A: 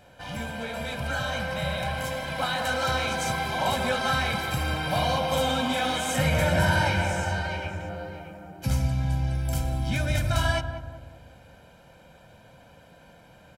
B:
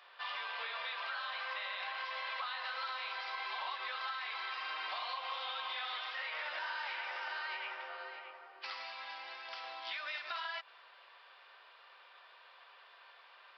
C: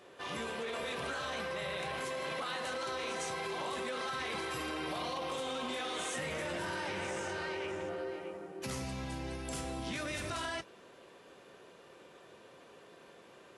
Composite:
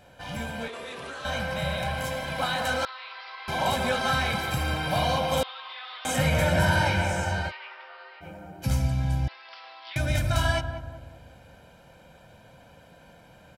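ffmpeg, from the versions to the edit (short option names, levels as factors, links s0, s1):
-filter_complex "[1:a]asplit=4[s0][s1][s2][s3];[0:a]asplit=6[s4][s5][s6][s7][s8][s9];[s4]atrim=end=0.682[s10];[2:a]atrim=start=0.678:end=1.252[s11];[s5]atrim=start=1.248:end=2.852[s12];[s0]atrim=start=2.848:end=3.482[s13];[s6]atrim=start=3.478:end=5.432[s14];[s1]atrim=start=5.428:end=6.052[s15];[s7]atrim=start=6.048:end=7.52[s16];[s2]atrim=start=7.48:end=8.24[s17];[s8]atrim=start=8.2:end=9.282[s18];[s3]atrim=start=9.278:end=9.962[s19];[s9]atrim=start=9.958[s20];[s10][s11]acrossfade=d=0.004:c1=hsin:c2=hsin[s21];[s21][s12]acrossfade=d=0.004:c1=hsin:c2=hsin[s22];[s22][s13]acrossfade=d=0.004:c1=hsin:c2=hsin[s23];[s23][s14]acrossfade=d=0.004:c1=hsin:c2=hsin[s24];[s24][s15]acrossfade=d=0.004:c1=hsin:c2=hsin[s25];[s25][s16]acrossfade=d=0.004:c1=hsin:c2=hsin[s26];[s26][s17]acrossfade=d=0.04:c1=tri:c2=tri[s27];[s27][s18]acrossfade=d=0.04:c1=tri:c2=tri[s28];[s28][s19]acrossfade=d=0.004:c1=hsin:c2=hsin[s29];[s29][s20]acrossfade=d=0.004:c1=hsin:c2=hsin"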